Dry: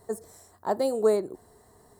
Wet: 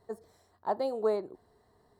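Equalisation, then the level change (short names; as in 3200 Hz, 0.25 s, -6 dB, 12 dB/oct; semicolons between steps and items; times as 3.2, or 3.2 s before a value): dynamic EQ 890 Hz, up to +7 dB, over -39 dBFS, Q 1.1; resonant high shelf 5600 Hz -10 dB, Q 1.5; -8.5 dB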